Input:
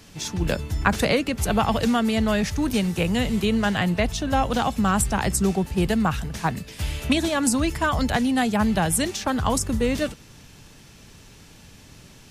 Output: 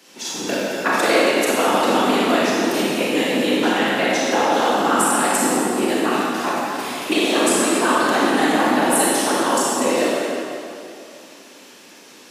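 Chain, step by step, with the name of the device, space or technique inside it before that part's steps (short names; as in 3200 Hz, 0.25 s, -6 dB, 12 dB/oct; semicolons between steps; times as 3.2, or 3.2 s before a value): whispering ghost (whisperiser; HPF 260 Hz 24 dB/oct; reverb RT60 2.6 s, pre-delay 29 ms, DRR -6.5 dB)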